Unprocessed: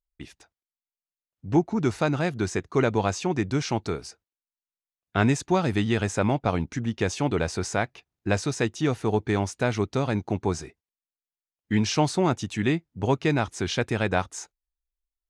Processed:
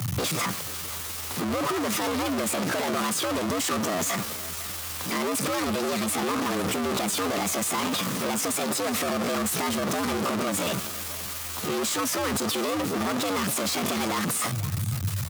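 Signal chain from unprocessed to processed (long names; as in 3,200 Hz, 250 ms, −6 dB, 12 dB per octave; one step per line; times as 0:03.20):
sign of each sample alone
single-tap delay 497 ms −17 dB
frequency shifter +63 Hz
pitch shifter +5 semitones
parametric band 1,200 Hz +6 dB 0.24 octaves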